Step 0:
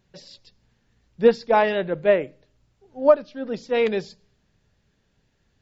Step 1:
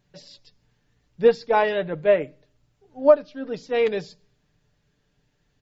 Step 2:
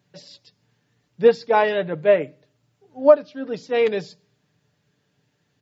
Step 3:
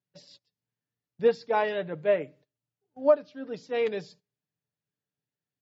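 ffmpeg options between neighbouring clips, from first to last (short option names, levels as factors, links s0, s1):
-af "aecho=1:1:6.8:0.44,volume=0.794"
-af "highpass=f=97:w=0.5412,highpass=f=97:w=1.3066,volume=1.26"
-af "agate=range=0.141:threshold=0.00501:ratio=16:detection=peak,volume=0.398"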